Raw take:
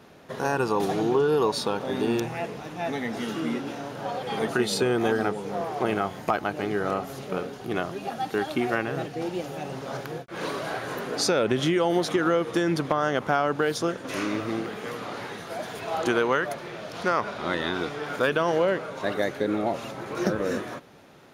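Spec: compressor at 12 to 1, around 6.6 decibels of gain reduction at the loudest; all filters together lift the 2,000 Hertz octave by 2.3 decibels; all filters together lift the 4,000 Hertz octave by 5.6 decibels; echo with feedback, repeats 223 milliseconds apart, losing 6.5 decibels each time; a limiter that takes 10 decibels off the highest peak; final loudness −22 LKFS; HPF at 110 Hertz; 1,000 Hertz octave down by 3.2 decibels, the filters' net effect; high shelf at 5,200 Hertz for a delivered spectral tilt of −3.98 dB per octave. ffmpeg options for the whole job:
ffmpeg -i in.wav -af "highpass=110,equalizer=frequency=1000:width_type=o:gain=-6.5,equalizer=frequency=2000:width_type=o:gain=4.5,equalizer=frequency=4000:width_type=o:gain=4.5,highshelf=frequency=5200:gain=3.5,acompressor=threshold=-25dB:ratio=12,alimiter=limit=-21dB:level=0:latency=1,aecho=1:1:223|446|669|892|1115|1338:0.473|0.222|0.105|0.0491|0.0231|0.0109,volume=9.5dB" out.wav

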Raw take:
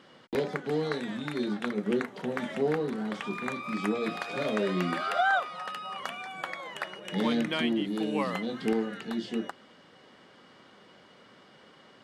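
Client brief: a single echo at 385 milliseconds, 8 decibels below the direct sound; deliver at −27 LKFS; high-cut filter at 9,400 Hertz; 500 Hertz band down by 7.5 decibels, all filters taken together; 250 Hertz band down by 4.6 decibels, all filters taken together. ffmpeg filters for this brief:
ffmpeg -i in.wav -af "lowpass=9400,equalizer=frequency=250:width_type=o:gain=-3.5,equalizer=frequency=500:width_type=o:gain=-8.5,aecho=1:1:385:0.398,volume=7dB" out.wav

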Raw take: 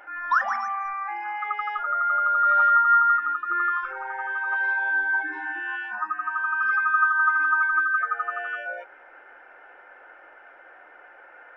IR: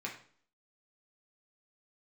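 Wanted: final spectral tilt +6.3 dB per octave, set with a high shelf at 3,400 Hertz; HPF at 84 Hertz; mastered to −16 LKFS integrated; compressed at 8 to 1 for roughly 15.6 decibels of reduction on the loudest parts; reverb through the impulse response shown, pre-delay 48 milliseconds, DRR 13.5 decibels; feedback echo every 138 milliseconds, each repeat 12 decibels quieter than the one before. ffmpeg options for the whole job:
-filter_complex "[0:a]highpass=84,highshelf=frequency=3400:gain=3,acompressor=threshold=-32dB:ratio=8,aecho=1:1:138|276|414:0.251|0.0628|0.0157,asplit=2[link_01][link_02];[1:a]atrim=start_sample=2205,adelay=48[link_03];[link_02][link_03]afir=irnorm=-1:irlink=0,volume=-15dB[link_04];[link_01][link_04]amix=inputs=2:normalize=0,volume=17.5dB"

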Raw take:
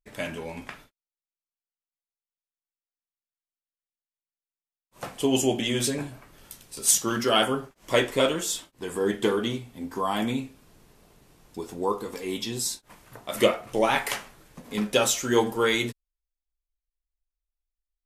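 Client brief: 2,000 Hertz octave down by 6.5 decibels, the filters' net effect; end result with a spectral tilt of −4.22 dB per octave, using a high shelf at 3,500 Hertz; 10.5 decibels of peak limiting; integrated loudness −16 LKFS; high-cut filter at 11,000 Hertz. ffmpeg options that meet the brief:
ffmpeg -i in.wav -af "lowpass=11000,equalizer=frequency=2000:width_type=o:gain=-6.5,highshelf=frequency=3500:gain=-6,volume=15dB,alimiter=limit=-3.5dB:level=0:latency=1" out.wav

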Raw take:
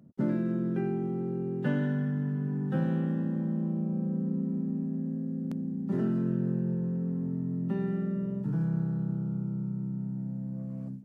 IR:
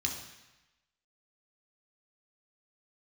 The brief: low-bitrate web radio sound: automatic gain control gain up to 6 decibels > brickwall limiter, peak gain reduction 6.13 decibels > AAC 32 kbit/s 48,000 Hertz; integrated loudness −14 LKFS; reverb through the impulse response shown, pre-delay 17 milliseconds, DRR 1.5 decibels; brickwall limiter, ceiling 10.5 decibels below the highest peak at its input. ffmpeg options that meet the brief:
-filter_complex "[0:a]alimiter=level_in=3dB:limit=-24dB:level=0:latency=1,volume=-3dB,asplit=2[link_01][link_02];[1:a]atrim=start_sample=2205,adelay=17[link_03];[link_02][link_03]afir=irnorm=-1:irlink=0,volume=-5dB[link_04];[link_01][link_04]amix=inputs=2:normalize=0,dynaudnorm=maxgain=6dB,alimiter=level_in=2.5dB:limit=-24dB:level=0:latency=1,volume=-2.5dB,volume=20.5dB" -ar 48000 -c:a aac -b:a 32k

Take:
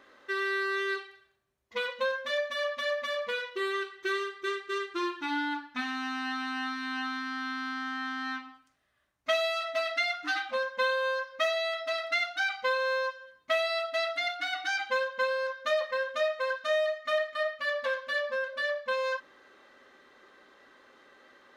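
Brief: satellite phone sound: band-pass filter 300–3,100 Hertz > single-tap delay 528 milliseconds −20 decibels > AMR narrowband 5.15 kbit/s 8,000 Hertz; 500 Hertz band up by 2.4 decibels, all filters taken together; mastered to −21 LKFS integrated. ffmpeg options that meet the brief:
ffmpeg -i in.wav -af "highpass=300,lowpass=3100,equalizer=frequency=500:width_type=o:gain=3.5,aecho=1:1:528:0.1,volume=10.5dB" -ar 8000 -c:a libopencore_amrnb -b:a 5150 out.amr

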